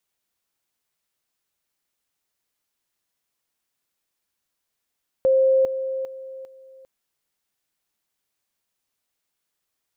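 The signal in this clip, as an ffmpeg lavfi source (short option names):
-f lavfi -i "aevalsrc='pow(10,(-14-10*floor(t/0.4))/20)*sin(2*PI*529*t)':d=1.6:s=44100"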